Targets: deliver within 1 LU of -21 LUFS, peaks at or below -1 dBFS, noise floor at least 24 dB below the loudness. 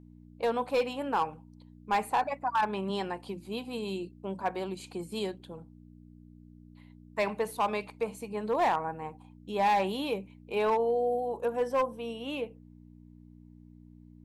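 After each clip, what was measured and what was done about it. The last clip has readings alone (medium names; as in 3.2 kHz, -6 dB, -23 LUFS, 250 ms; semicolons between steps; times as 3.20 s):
clipped samples 0.7%; clipping level -21.0 dBFS; hum 60 Hz; highest harmonic 300 Hz; hum level -51 dBFS; loudness -31.5 LUFS; peak level -21.0 dBFS; loudness target -21.0 LUFS
-> clip repair -21 dBFS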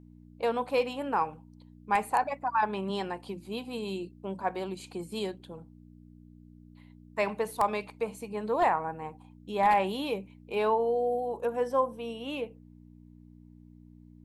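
clipped samples 0.0%; hum 60 Hz; highest harmonic 300 Hz; hum level -51 dBFS
-> de-hum 60 Hz, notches 5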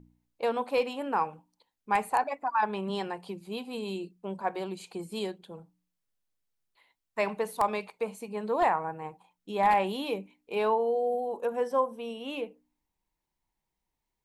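hum not found; loudness -31.0 LUFS; peak level -12.0 dBFS; loudness target -21.0 LUFS
-> trim +10 dB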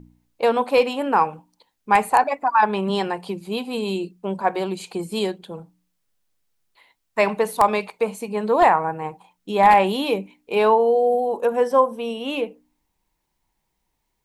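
loudness -21.0 LUFS; peak level -2.0 dBFS; noise floor -75 dBFS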